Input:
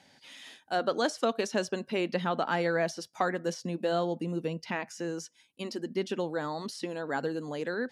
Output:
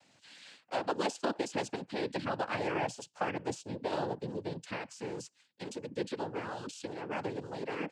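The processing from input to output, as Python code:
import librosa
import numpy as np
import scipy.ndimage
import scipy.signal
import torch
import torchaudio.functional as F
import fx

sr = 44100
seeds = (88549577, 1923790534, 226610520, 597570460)

y = fx.noise_vocoder(x, sr, seeds[0], bands=8)
y = F.gain(torch.from_numpy(y), -4.5).numpy()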